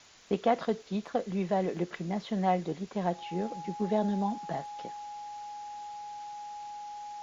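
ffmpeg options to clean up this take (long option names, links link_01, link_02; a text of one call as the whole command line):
ffmpeg -i in.wav -af "adeclick=threshold=4,bandreject=frequency=830:width=30,afwtdn=0.0022" out.wav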